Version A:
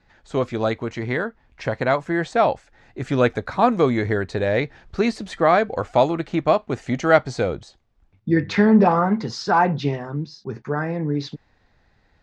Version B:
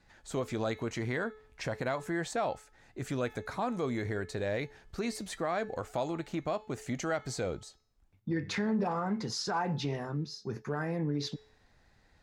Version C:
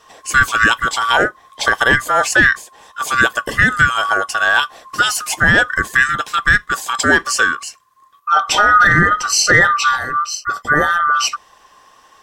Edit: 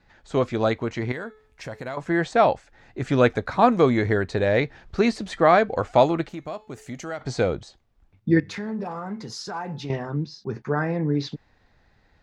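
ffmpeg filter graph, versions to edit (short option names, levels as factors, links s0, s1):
-filter_complex "[1:a]asplit=3[s0][s1][s2];[0:a]asplit=4[s3][s4][s5][s6];[s3]atrim=end=1.122[s7];[s0]atrim=start=1.118:end=1.972[s8];[s4]atrim=start=1.968:end=6.292[s9];[s1]atrim=start=6.288:end=7.212[s10];[s5]atrim=start=7.208:end=8.402[s11];[s2]atrim=start=8.398:end=9.902[s12];[s6]atrim=start=9.898[s13];[s7][s8]acrossfade=d=0.004:c1=hsin:c2=hsin[s14];[s14][s9]acrossfade=d=0.004:c1=hsin:c2=hsin[s15];[s15][s10]acrossfade=d=0.004:c1=hsin:c2=hsin[s16];[s16][s11]acrossfade=d=0.004:c1=hsin:c2=hsin[s17];[s17][s12]acrossfade=d=0.004:c1=hsin:c2=hsin[s18];[s18][s13]acrossfade=d=0.004:c1=hsin:c2=hsin"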